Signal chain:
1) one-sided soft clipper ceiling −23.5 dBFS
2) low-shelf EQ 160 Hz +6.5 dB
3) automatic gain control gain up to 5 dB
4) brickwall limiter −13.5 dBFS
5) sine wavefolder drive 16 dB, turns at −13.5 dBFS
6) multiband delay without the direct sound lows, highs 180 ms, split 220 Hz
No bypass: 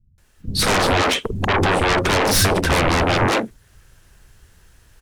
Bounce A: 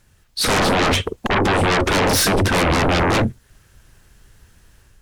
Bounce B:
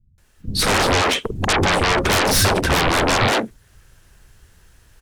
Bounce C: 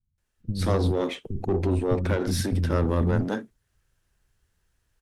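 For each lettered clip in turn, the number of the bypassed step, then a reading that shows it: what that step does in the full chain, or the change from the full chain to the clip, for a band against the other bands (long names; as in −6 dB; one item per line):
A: 6, echo-to-direct ratio 21.5 dB to none audible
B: 4, average gain reduction 2.0 dB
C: 5, change in crest factor +2.0 dB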